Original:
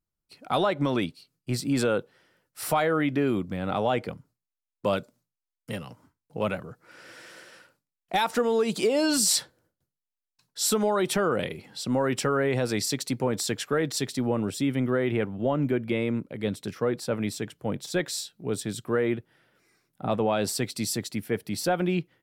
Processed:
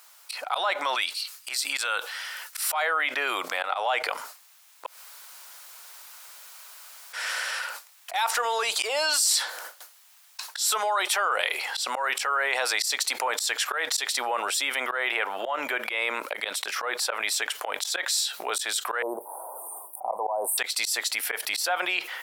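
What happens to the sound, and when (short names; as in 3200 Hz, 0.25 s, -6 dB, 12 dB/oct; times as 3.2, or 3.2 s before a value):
0.95–2.72 bell 470 Hz -11 dB 2.8 oct
4.86–7.13 room tone
19.02–20.58 Chebyshev band-stop 1000–8900 Hz, order 5
whole clip: HPF 770 Hz 24 dB/oct; auto swell 0.159 s; fast leveller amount 70%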